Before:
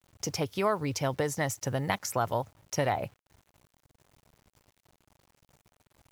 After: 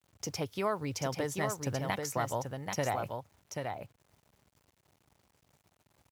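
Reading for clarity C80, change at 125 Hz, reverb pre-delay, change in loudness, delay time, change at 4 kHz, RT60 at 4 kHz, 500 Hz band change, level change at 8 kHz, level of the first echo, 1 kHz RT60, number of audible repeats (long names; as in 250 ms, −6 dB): no reverb audible, −3.5 dB, no reverb audible, −4.0 dB, 785 ms, −3.5 dB, no reverb audible, −3.5 dB, −3.5 dB, −5.0 dB, no reverb audible, 1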